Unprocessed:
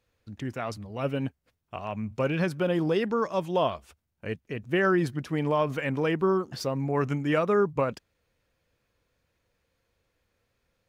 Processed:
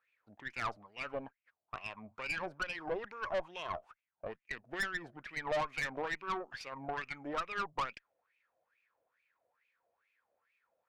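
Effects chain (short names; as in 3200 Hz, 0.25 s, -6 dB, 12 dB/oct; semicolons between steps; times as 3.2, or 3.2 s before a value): compressor 3:1, threshold -26 dBFS, peak gain reduction 5.5 dB; wah 2.3 Hz 630–2500 Hz, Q 8.2; tube stage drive 43 dB, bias 0.6; gain +13 dB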